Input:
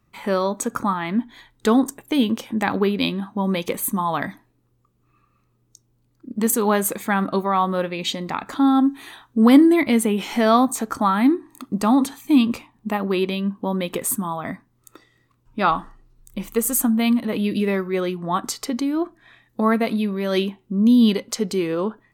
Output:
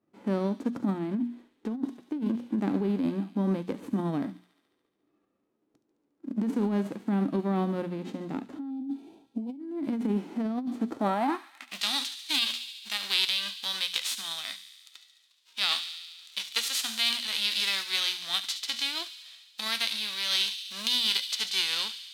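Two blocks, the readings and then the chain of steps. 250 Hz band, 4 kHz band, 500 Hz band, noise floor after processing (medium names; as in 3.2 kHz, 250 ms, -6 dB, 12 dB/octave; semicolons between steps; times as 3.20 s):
-12.0 dB, +5.5 dB, -13.5 dB, -75 dBFS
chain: formants flattened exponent 0.3; hum notches 60/120/180/240 Hz; time-frequency box 8.70–9.60 s, 1–2.2 kHz -16 dB; band-pass sweep 290 Hz -> 3.7 kHz, 10.87–11.83 s; feedback echo behind a high-pass 71 ms, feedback 74%, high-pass 2.9 kHz, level -11 dB; compressor with a negative ratio -28 dBFS, ratio -1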